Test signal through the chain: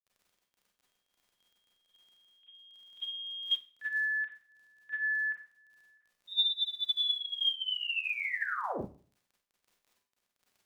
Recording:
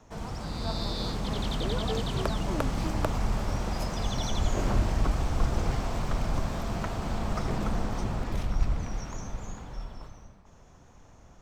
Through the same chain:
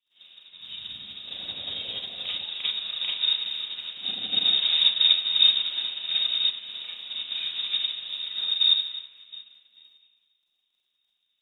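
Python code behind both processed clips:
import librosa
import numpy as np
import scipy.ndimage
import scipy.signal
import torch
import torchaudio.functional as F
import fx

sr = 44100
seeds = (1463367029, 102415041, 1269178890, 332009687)

y = fx.freq_invert(x, sr, carrier_hz=3700)
y = scipy.signal.sosfilt(scipy.signal.butter(2, 75.0, 'highpass', fs=sr, output='sos'), y)
y = fx.dmg_crackle(y, sr, seeds[0], per_s=19.0, level_db=-38.0)
y = fx.rev_schroeder(y, sr, rt60_s=0.49, comb_ms=31, drr_db=-5.0)
y = fx.upward_expand(y, sr, threshold_db=-34.0, expansion=2.5)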